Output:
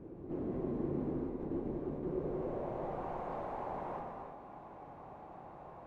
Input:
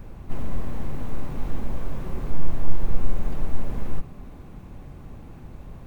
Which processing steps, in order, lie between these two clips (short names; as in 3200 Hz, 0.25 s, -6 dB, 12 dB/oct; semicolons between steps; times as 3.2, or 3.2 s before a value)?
1.16–2.03 expander -17 dBFS; non-linear reverb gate 0.37 s flat, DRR 0.5 dB; band-pass sweep 350 Hz -> 790 Hz, 2.07–3.11; gain +4 dB